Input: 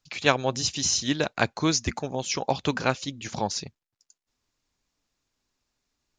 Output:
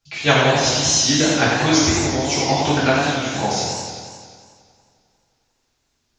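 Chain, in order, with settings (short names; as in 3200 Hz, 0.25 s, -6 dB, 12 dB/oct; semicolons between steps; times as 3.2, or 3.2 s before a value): two-slope reverb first 0.75 s, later 3.1 s, from -26 dB, DRR -7 dB; warbling echo 89 ms, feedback 72%, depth 137 cents, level -4.5 dB; gain -1 dB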